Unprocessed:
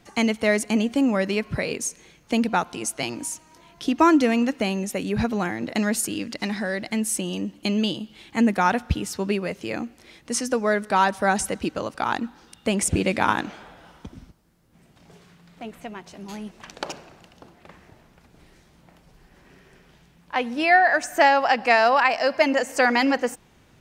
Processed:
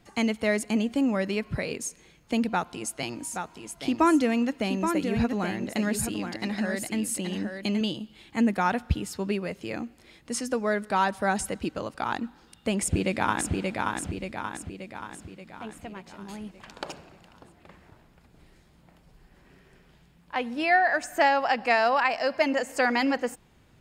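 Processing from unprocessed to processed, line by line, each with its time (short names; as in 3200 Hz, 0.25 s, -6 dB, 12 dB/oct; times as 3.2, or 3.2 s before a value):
2.51–7.81 echo 0.825 s -6.5 dB
12.79–13.53 echo throw 0.58 s, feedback 55%, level -3 dB
whole clip: low shelf 150 Hz +4.5 dB; notch 5900 Hz, Q 10; gain -5 dB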